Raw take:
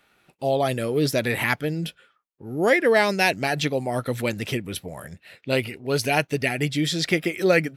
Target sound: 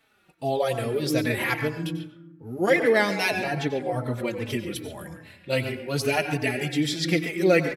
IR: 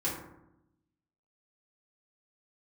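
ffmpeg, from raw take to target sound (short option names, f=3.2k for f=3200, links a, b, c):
-filter_complex "[0:a]asettb=1/sr,asplit=3[a][b][c];[a]atrim=end=3.434[d];[b]atrim=start=3.43:end=4.5,asetpts=PTS-STARTPTS,afade=t=in:d=0.004:c=qsin,afade=t=out:st=1.066:d=0.004:c=qsin,highshelf=f=2.7k:g=-9[e];[c]atrim=start=4.496[f];[d][e]acrossfade=d=0.004:c1=hsin:c2=qsin[g];[g][f]acrossfade=d=0.004:c1=qsin:c2=hsin,asplit=2[h][i];[i]adelay=140,highpass=300,lowpass=3.4k,asoftclip=type=hard:threshold=-13dB,volume=-9dB[j];[h][j]amix=inputs=2:normalize=0,asplit=2[k][l];[1:a]atrim=start_sample=2205,adelay=90[m];[l][m]afir=irnorm=-1:irlink=0,volume=-15.5dB[n];[k][n]amix=inputs=2:normalize=0,asplit=2[o][p];[p]adelay=4,afreqshift=-2.5[q];[o][q]amix=inputs=2:normalize=1"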